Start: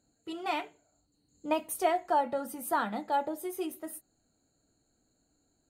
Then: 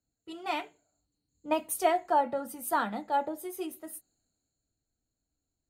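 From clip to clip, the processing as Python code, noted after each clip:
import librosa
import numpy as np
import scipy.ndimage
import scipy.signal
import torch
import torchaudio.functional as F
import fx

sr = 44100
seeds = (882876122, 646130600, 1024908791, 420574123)

y = fx.band_widen(x, sr, depth_pct=40)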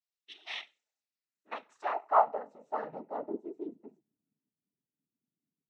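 y = fx.filter_sweep_bandpass(x, sr, from_hz=3000.0, to_hz=220.0, start_s=0.8, end_s=3.83, q=3.9)
y = fx.noise_vocoder(y, sr, seeds[0], bands=12)
y = y * 10.0 ** (4.0 / 20.0)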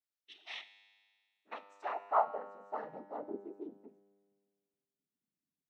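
y = fx.comb_fb(x, sr, f0_hz=100.0, decay_s=1.8, harmonics='all', damping=0.0, mix_pct=70)
y = y * 10.0 ** (4.5 / 20.0)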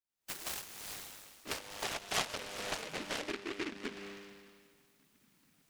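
y = fx.recorder_agc(x, sr, target_db=-25.5, rise_db_per_s=67.0, max_gain_db=30)
y = fx.noise_mod_delay(y, sr, seeds[1], noise_hz=1900.0, depth_ms=0.29)
y = y * 10.0 ** (-5.5 / 20.0)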